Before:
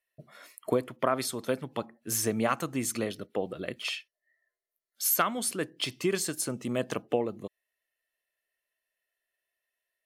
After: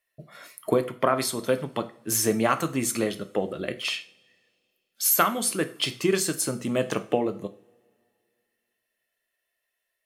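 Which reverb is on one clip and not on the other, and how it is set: two-slope reverb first 0.39 s, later 2.4 s, from -27 dB, DRR 8.5 dB; gain +4.5 dB

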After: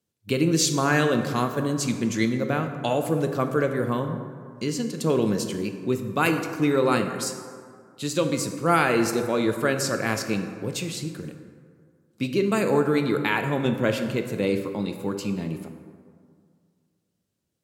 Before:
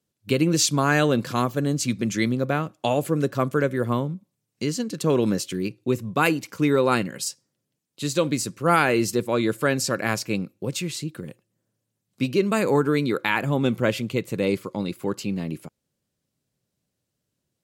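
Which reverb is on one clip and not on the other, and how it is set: plate-style reverb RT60 2.1 s, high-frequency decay 0.45×, DRR 6 dB; gain -2 dB

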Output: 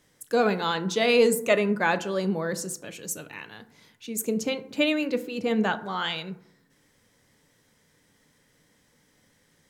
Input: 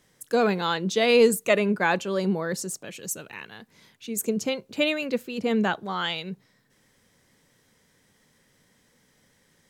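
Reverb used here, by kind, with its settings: FDN reverb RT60 0.72 s, low-frequency decay 1.2×, high-frequency decay 0.4×, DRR 10 dB; gain -1 dB

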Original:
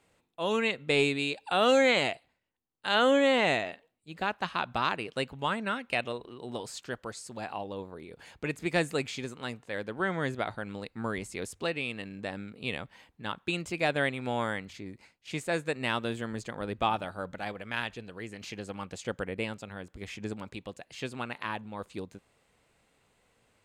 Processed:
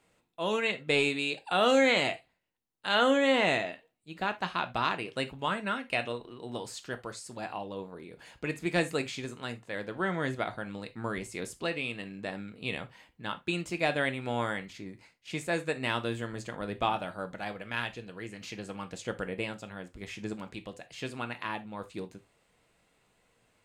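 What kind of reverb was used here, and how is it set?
non-linear reverb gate 0.1 s falling, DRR 7.5 dB; gain -1 dB

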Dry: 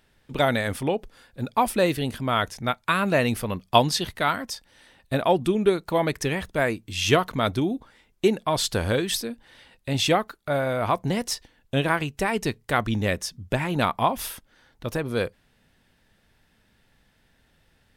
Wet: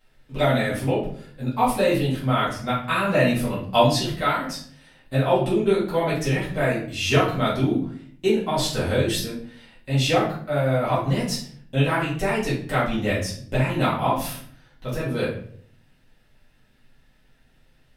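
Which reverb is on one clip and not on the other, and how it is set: shoebox room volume 71 m³, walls mixed, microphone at 2.1 m; gain -9 dB

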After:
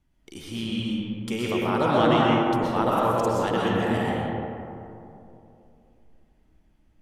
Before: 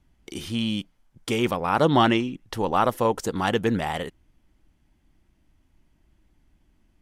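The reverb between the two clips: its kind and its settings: digital reverb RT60 2.8 s, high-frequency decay 0.35×, pre-delay 85 ms, DRR -5.5 dB; gain -6.5 dB

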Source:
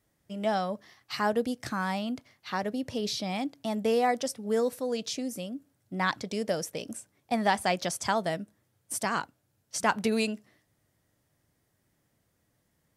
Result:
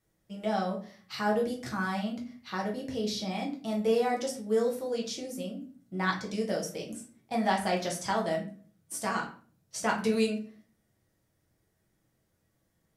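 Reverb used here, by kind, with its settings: shoebox room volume 34 m³, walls mixed, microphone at 0.68 m; gain -6 dB

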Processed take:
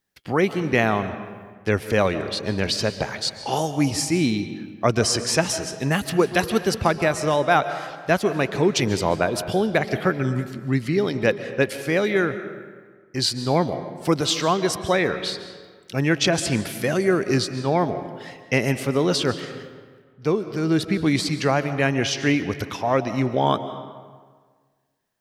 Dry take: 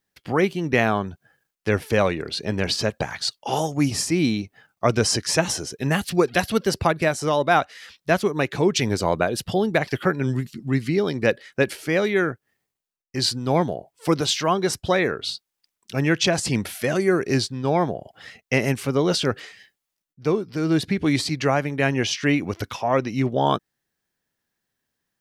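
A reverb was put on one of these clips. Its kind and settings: digital reverb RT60 1.6 s, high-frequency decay 0.65×, pre-delay 0.1 s, DRR 11 dB

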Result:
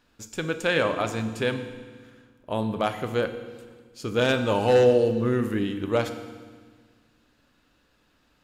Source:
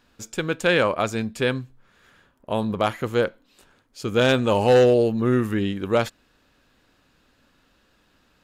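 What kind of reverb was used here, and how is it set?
FDN reverb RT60 1.5 s, low-frequency decay 1.45×, high-frequency decay 1×, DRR 7.5 dB; gain -4 dB

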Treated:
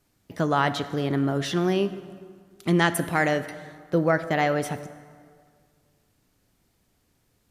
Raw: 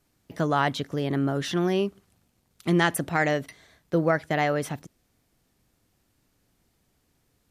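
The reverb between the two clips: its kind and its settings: plate-style reverb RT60 2 s, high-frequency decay 0.65×, DRR 11.5 dB; gain +1 dB

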